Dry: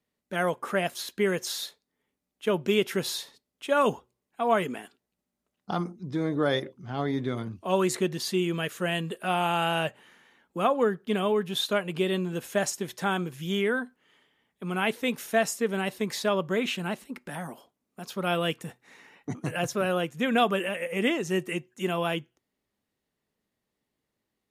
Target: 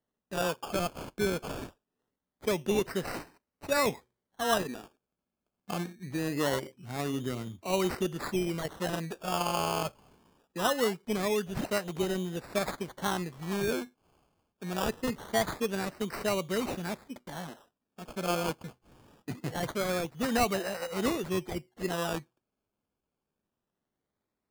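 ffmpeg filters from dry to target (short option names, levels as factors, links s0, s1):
-af "acrusher=samples=18:mix=1:aa=0.000001:lfo=1:lforange=10.8:lforate=0.23,volume=0.631"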